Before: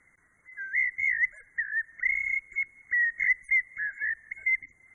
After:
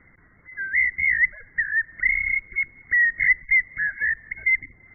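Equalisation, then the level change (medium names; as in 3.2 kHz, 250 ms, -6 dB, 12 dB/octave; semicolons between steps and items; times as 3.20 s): low-pass 2.3 kHz 24 dB/octave; bass shelf 450 Hz +10 dB; +7.0 dB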